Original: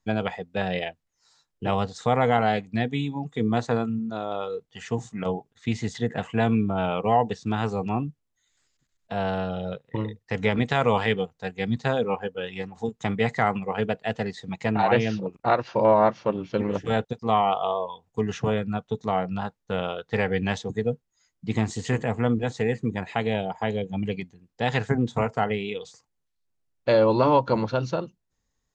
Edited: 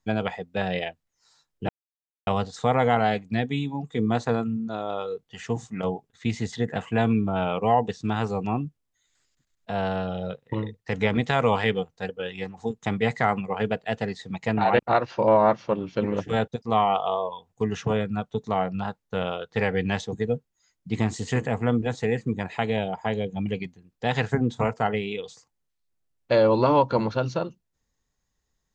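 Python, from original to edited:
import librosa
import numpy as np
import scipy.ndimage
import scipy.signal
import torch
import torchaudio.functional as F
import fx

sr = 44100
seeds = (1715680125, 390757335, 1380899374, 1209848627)

y = fx.edit(x, sr, fx.insert_silence(at_s=1.69, length_s=0.58),
    fx.cut(start_s=11.51, length_s=0.76),
    fx.cut(start_s=14.97, length_s=0.39), tone=tone)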